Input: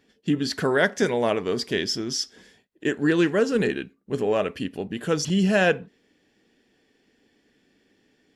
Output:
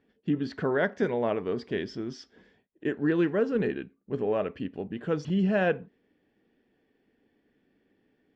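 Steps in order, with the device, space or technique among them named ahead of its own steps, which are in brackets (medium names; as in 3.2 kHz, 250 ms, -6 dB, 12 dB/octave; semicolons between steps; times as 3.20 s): phone in a pocket (low-pass 3.6 kHz 12 dB/octave; treble shelf 2.3 kHz -10.5 dB); trim -4 dB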